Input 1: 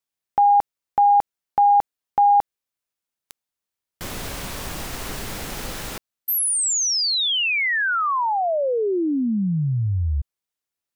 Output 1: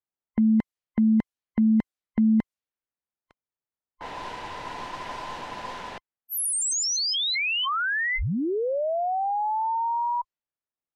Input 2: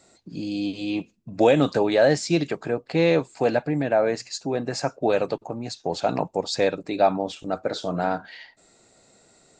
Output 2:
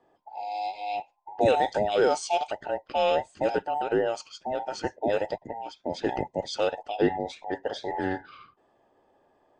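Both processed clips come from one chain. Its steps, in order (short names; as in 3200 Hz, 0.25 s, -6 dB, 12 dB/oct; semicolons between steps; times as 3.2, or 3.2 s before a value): band inversion scrambler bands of 1000 Hz; low-pass opened by the level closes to 1400 Hz, open at -18.5 dBFS; gain -4.5 dB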